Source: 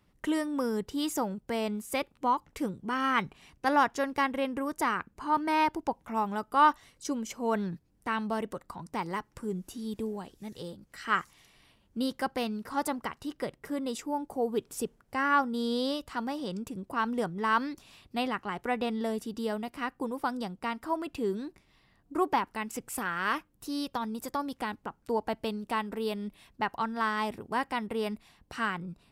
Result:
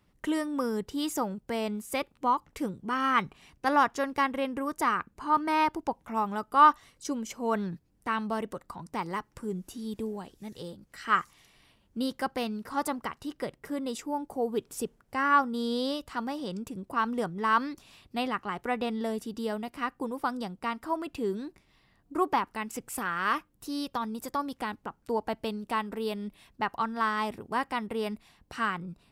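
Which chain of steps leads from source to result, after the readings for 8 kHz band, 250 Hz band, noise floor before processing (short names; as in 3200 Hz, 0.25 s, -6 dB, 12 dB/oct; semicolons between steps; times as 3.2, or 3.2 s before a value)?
0.0 dB, 0.0 dB, -68 dBFS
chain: dynamic EQ 1200 Hz, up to +6 dB, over -45 dBFS, Q 7.1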